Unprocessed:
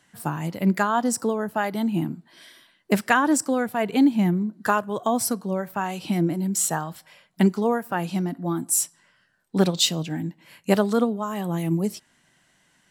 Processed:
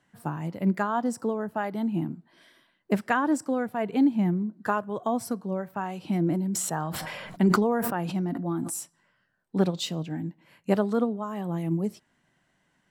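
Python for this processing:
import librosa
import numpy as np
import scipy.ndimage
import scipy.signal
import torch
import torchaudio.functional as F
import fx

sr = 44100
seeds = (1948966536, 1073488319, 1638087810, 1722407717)

y = fx.high_shelf(x, sr, hz=2500.0, db=-11.5)
y = fx.sustainer(y, sr, db_per_s=25.0, at=(6.08, 8.8))
y = y * 10.0 ** (-3.5 / 20.0)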